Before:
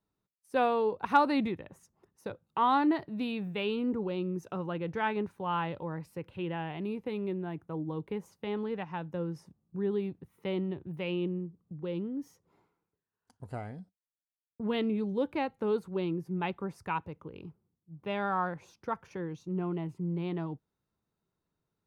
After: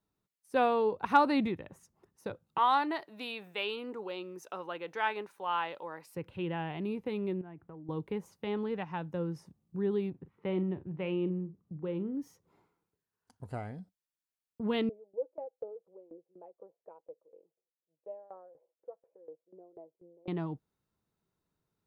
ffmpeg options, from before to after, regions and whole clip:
-filter_complex "[0:a]asettb=1/sr,asplit=3[a][b][c];[a]atrim=end=2.584[d];[b]atrim=start=2.58:end=6.15,asetpts=PTS-STARTPTS,afade=t=in:d=0.004:c=qsin,afade=t=out:st=3.566:d=0.004:c=qsin,highpass=520,highshelf=f=3.7k:g=5.5[e];[c]atrim=start=6.146[f];[d][e]acrossfade=d=0.004:c1=hsin:c2=qsin[g];[g][f]acrossfade=d=0.004:c1=qsin:c2=hsin,asettb=1/sr,asplit=3[h][i][j];[h]atrim=end=7.414[k];[i]atrim=start=7.41:end=7.89,asetpts=PTS-STARTPTS,afade=t=in:d=0.004:c=qsin,afade=t=out:st=0.476:d=0.004:c=qsin,lowpass=f=2.7k:w=0.5412,lowpass=f=2.7k:w=1.3066,acompressor=threshold=-46dB:ratio=5:attack=3.2:release=140:knee=1:detection=peak[l];[j]atrim=start=7.886[m];[k][l]acrossfade=d=0.004:c1=hsin:c2=qsin[n];[n][m]acrossfade=d=0.004:c1=qsin:c2=hsin,asettb=1/sr,asplit=3[o][p][q];[o]atrim=end=10.104[r];[p]atrim=start=10.1:end=12.15,asetpts=PTS-STARTPTS,afade=t=in:d=0.004:c=qsin,afade=t=out:st=2.046:d=0.004:c=qsin,lowpass=2.2k,asplit=2[s][t];[t]adelay=43,volume=-14dB[u];[s][u]amix=inputs=2:normalize=0,atrim=end_sample=90405[v];[q]atrim=start=12.146[w];[r][v]acrossfade=d=0.004:c1=hsin:c2=qsin[x];[x][w]acrossfade=d=0.004:c1=qsin:c2=hsin,asettb=1/sr,asplit=3[y][z][aa];[y]atrim=end=14.894[ab];[z]atrim=start=14.89:end=20.28,asetpts=PTS-STARTPTS,afade=t=in:d=0.004:c=qsin,afade=t=out:st=5.386:d=0.004:c=qsin,asuperpass=centerf=540:order=4:qfactor=2.7,aecho=1:1:6.1:0.47,atrim=end_sample=237699,aeval=exprs='val(0)*pow(10,-19*if(lt(mod(4.1*n/s,1),2*abs(4.1)/1000),1-mod(4.1*n/s,1)/(2*abs(4.1)/1000),(mod(4.1*n/s,1)-2*abs(4.1)/1000)/(1-2*abs(4.1)/1000))/20)':c=same[ac];[aa]atrim=start=20.276[ad];[ab][ac]acrossfade=d=0.004:c1=hsin:c2=qsin[ae];[ae][ad]acrossfade=d=0.004:c1=qsin:c2=hsin"

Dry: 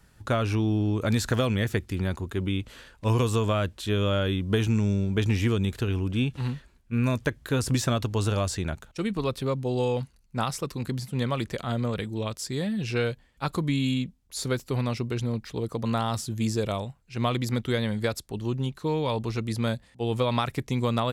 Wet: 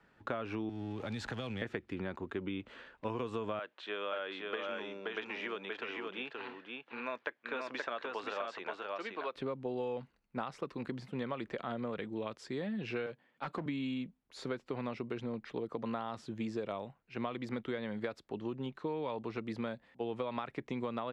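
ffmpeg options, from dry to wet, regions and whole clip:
-filter_complex "[0:a]asettb=1/sr,asplit=3[a][b][c];[a]atrim=end=0.694[d];[b]atrim=start=0.69:end=1.62,asetpts=PTS-STARTPTS,afade=t=in:d=0.004:c=qsin,afade=t=out:st=0.926:d=0.004:c=qsin,aeval=exprs='val(0)+0.5*0.0178*sgn(val(0))':c=same,acrossover=split=150|3000[e][f][g];[f]acompressor=threshold=-35dB:ratio=6:attack=3.2:release=140:knee=2.83:detection=peak[h];[e][h][g]amix=inputs=3:normalize=0,equalizer=f=820:w=7.9:g=8.5[i];[c]atrim=start=1.616[j];[d][i]acrossfade=d=0.004:c1=hsin:c2=qsin[k];[k][j]acrossfade=d=0.004:c1=qsin:c2=hsin,asettb=1/sr,asplit=3[l][m][n];[l]atrim=end=3.594[o];[m]atrim=start=3.59:end=9.35,asetpts=PTS-STARTPTS,afade=t=in:d=0.004:c=qsin,afade=t=out:st=5.756:d=0.004:c=qsin,highpass=640,lowpass=5k,aecho=1:1:526:0.631,atrim=end_sample=254016[p];[n]atrim=start=9.346[q];[o][p]acrossfade=d=0.004:c1=hsin:c2=qsin[r];[r][q]acrossfade=d=0.004:c1=qsin:c2=hsin,asettb=1/sr,asplit=3[s][t][u];[s]atrim=end=13.064[v];[t]atrim=start=13.06:end=13.66,asetpts=PTS-STARTPTS,afade=t=in:d=0.004:c=qsin,afade=t=out:st=0.596:d=0.004:c=qsin,highpass=f=110:w=0.5412,highpass=f=110:w=1.3066,volume=26.5dB,asoftclip=hard,volume=-26.5dB[w];[u]atrim=start=13.656[x];[v][w]acrossfade=d=0.004:c1=hsin:c2=qsin[y];[y][x]acrossfade=d=0.004:c1=qsin:c2=hsin,lowpass=6.9k,acrossover=split=200 3000:gain=0.126 1 0.126[z][aa][ab];[z][aa][ab]amix=inputs=3:normalize=0,acompressor=threshold=-32dB:ratio=6,volume=-2dB"

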